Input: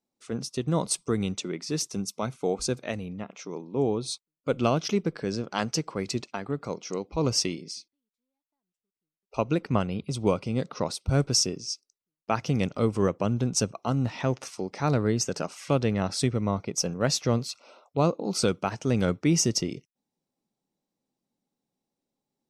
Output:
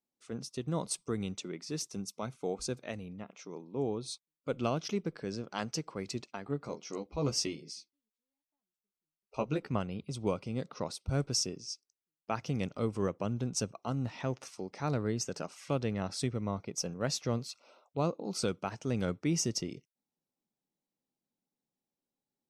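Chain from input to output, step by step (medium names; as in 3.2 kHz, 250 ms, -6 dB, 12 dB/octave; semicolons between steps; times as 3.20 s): 6.45–9.72 s: doubling 14 ms -4.5 dB; trim -8 dB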